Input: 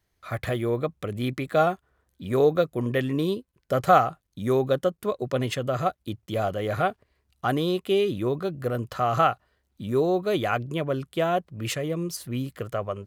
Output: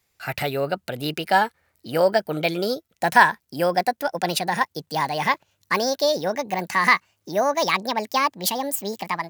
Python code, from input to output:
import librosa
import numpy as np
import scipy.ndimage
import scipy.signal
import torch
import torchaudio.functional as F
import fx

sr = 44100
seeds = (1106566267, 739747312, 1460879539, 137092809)

y = fx.speed_glide(x, sr, from_pct=114, to_pct=167)
y = fx.tilt_eq(y, sr, slope=2.0)
y = y * 10.0 ** (3.5 / 20.0)